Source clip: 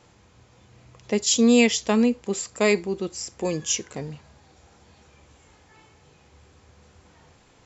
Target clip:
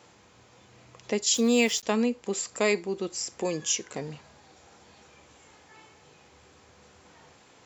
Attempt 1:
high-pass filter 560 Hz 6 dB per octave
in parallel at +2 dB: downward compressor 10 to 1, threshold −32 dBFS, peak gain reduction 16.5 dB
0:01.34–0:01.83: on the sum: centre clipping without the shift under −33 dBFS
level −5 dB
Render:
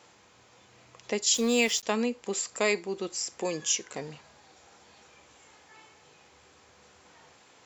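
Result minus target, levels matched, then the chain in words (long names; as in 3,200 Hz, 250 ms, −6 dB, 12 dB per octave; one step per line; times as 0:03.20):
250 Hz band −3.0 dB
high-pass filter 260 Hz 6 dB per octave
in parallel at +2 dB: downward compressor 10 to 1, threshold −32 dBFS, peak gain reduction 18.5 dB
0:01.34–0:01.83: on the sum: centre clipping without the shift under −33 dBFS
level −5 dB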